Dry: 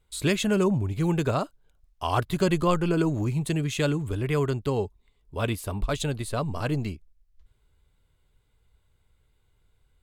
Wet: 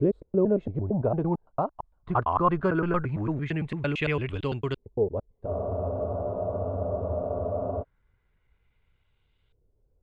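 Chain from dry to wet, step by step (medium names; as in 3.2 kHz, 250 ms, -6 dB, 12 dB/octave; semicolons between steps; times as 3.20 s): slices played last to first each 113 ms, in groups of 3; LFO low-pass saw up 0.21 Hz 450–3300 Hz; spectral freeze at 5.47 s, 2.35 s; trim -3 dB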